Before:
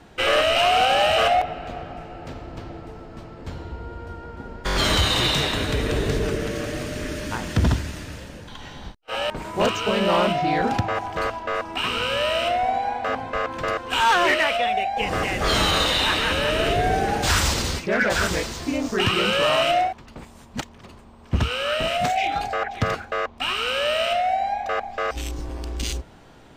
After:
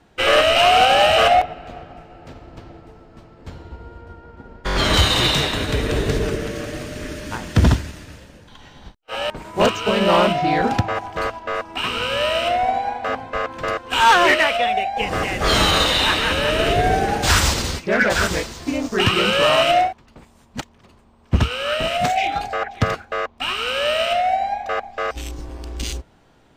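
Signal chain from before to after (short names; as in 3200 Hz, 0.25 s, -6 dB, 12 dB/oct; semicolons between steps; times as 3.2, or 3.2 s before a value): 4.01–4.94 high shelf 5400 Hz -7.5 dB; upward expander 1.5:1, over -40 dBFS; gain +6 dB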